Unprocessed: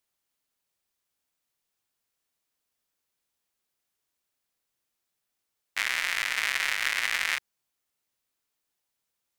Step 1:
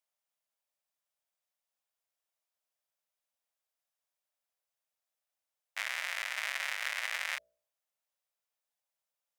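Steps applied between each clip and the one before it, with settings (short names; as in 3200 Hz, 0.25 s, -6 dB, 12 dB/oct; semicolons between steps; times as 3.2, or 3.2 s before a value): resonant low shelf 440 Hz -9.5 dB, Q 3; notch 4300 Hz, Q 22; de-hum 59.62 Hz, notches 11; gain -8.5 dB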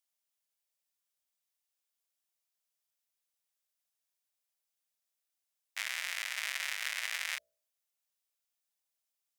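high shelf 2000 Hz +11.5 dB; gain -7.5 dB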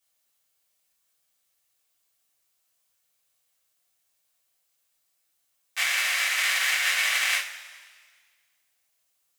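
two-slope reverb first 0.27 s, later 1.7 s, from -18 dB, DRR -9 dB; gain +3.5 dB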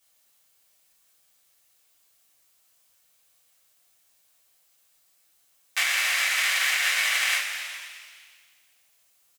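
compressor 2.5:1, threshold -33 dBFS, peak gain reduction 8.5 dB; on a send: frequency-shifting echo 0.123 s, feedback 65%, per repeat +91 Hz, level -13 dB; on the sum: gain +8 dB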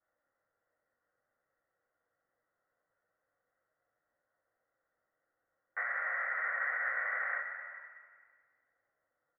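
rippled Chebyshev low-pass 2000 Hz, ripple 9 dB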